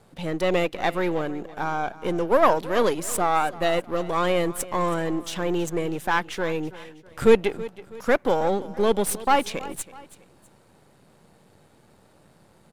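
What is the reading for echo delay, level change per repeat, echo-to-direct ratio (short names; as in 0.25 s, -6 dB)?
0.325 s, -7.5 dB, -17.5 dB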